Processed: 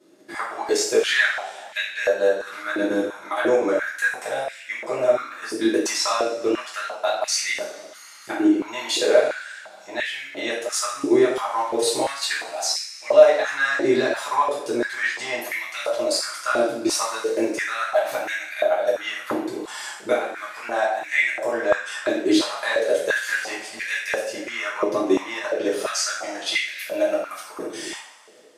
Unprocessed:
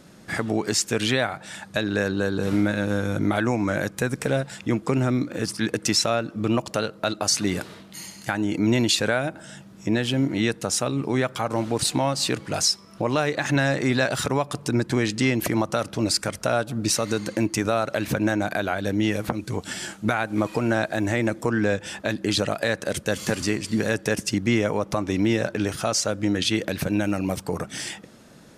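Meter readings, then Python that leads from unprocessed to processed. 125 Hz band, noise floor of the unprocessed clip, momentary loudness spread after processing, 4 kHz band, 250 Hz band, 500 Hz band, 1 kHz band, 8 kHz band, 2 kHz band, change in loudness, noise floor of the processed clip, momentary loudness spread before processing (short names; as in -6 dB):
-22.0 dB, -47 dBFS, 11 LU, 0.0 dB, -3.5 dB, +5.0 dB, +3.0 dB, -0.5 dB, +4.0 dB, +1.5 dB, -43 dBFS, 7 LU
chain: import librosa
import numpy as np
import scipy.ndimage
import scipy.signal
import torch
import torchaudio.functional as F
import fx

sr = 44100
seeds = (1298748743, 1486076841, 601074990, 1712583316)

y = fx.level_steps(x, sr, step_db=12)
y = fx.rev_double_slope(y, sr, seeds[0], early_s=0.55, late_s=2.4, knee_db=-18, drr_db=-8.5)
y = fx.filter_held_highpass(y, sr, hz=2.9, low_hz=350.0, high_hz=2100.0)
y = y * 10.0 ** (-7.0 / 20.0)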